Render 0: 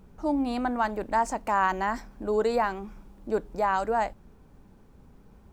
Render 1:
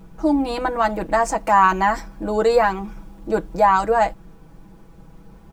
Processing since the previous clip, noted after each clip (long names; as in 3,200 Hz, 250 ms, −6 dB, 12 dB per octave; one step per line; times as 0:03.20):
comb filter 6.1 ms, depth 88%
level +6.5 dB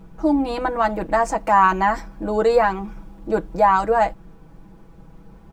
high-shelf EQ 3,900 Hz −6 dB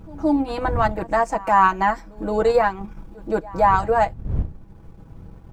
wind on the microphone 95 Hz −31 dBFS
transient designer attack −2 dB, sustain −7 dB
backwards echo 171 ms −22.5 dB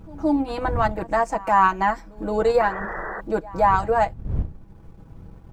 sound drawn into the spectrogram noise, 0:02.60–0:03.21, 320–2,000 Hz −30 dBFS
level −1.5 dB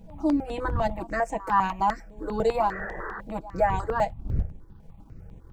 step-sequenced phaser 10 Hz 330–4,800 Hz
level −1.5 dB